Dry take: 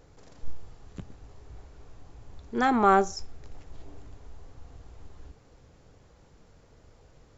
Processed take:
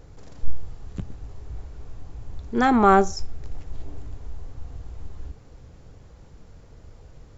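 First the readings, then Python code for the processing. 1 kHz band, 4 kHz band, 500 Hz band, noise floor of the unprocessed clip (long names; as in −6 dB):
+4.0 dB, +3.5 dB, +5.0 dB, −58 dBFS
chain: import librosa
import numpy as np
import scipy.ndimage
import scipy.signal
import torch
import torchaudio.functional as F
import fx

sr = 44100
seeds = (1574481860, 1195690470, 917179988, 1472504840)

y = fx.low_shelf(x, sr, hz=180.0, db=8.5)
y = y * librosa.db_to_amplitude(3.5)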